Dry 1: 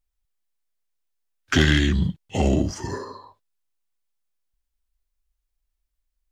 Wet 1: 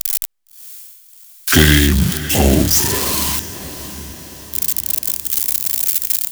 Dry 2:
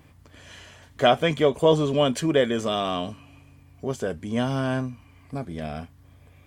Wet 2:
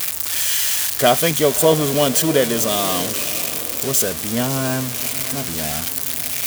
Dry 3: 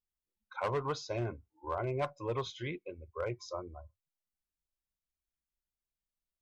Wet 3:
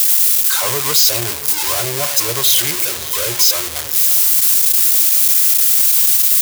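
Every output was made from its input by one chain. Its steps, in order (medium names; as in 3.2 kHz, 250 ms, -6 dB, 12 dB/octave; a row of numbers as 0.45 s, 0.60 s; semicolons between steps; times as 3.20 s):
zero-crossing glitches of -13 dBFS; echo that smears into a reverb 619 ms, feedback 54%, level -14 dB; peak normalisation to -2 dBFS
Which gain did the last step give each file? +7.0 dB, +3.5 dB, +9.0 dB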